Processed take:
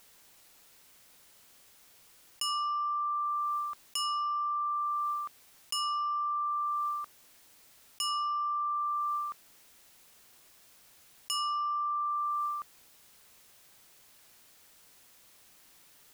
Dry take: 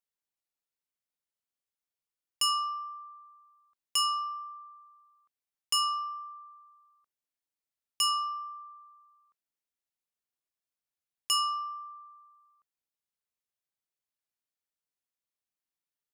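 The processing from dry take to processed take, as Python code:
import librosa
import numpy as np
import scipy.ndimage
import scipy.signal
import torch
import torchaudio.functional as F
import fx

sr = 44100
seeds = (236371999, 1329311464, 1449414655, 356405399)

y = fx.low_shelf(x, sr, hz=150.0, db=-12.0, at=(2.44, 3.26))
y = fx.env_flatten(y, sr, amount_pct=100)
y = F.gain(torch.from_numpy(y), -7.0).numpy()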